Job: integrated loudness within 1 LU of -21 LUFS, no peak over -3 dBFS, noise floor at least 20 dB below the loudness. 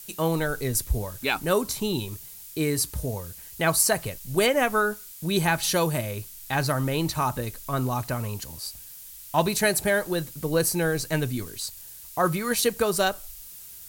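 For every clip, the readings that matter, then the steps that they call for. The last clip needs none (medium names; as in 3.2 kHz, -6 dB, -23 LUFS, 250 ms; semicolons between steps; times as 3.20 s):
noise floor -44 dBFS; noise floor target -46 dBFS; loudness -26.0 LUFS; peak level -9.0 dBFS; loudness target -21.0 LUFS
-> noise reduction 6 dB, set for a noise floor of -44 dBFS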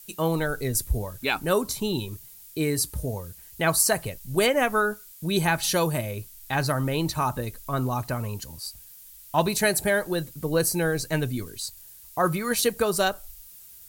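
noise floor -48 dBFS; loudness -26.0 LUFS; peak level -9.0 dBFS; loudness target -21.0 LUFS
-> trim +5 dB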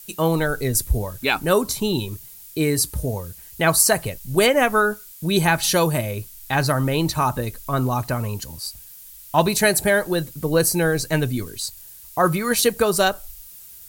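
loudness -21.0 LUFS; peak level -4.0 dBFS; noise floor -43 dBFS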